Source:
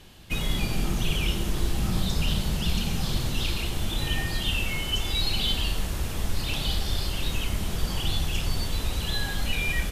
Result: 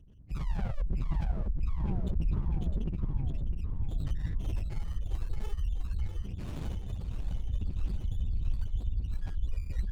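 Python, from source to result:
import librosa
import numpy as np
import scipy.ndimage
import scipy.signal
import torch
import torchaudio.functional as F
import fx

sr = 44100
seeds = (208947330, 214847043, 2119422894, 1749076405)

p1 = fx.rattle_buzz(x, sr, strikes_db=-33.0, level_db=-24.0)
p2 = fx.highpass(p1, sr, hz=fx.line((6.2, 130.0), (7.12, 60.0)), slope=6, at=(6.2, 7.12), fade=0.02)
p3 = fx.spec_gate(p2, sr, threshold_db=-10, keep='strong')
p4 = np.clip(10.0 ** (26.5 / 20.0) * p3, -1.0, 1.0) / 10.0 ** (26.5 / 20.0)
p5 = p3 + F.gain(torch.from_numpy(p4), -11.0).numpy()
p6 = fx.spec_paint(p5, sr, seeds[0], shape='fall', start_s=0.36, length_s=0.46, low_hz=540.0, high_hz=1200.0, level_db=-27.0)
p7 = p6 + fx.echo_feedback(p6, sr, ms=655, feedback_pct=55, wet_db=-11.0, dry=0)
p8 = fx.running_max(p7, sr, window=65)
y = F.gain(torch.from_numpy(p8), -4.0).numpy()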